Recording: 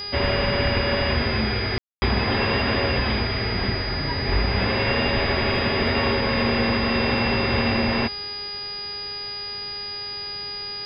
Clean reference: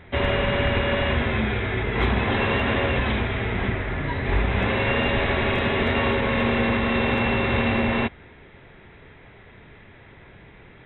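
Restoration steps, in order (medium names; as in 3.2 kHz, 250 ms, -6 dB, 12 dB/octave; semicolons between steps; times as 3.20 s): de-hum 410.1 Hz, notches 10; band-stop 4.9 kHz, Q 30; room tone fill 1.78–2.02 s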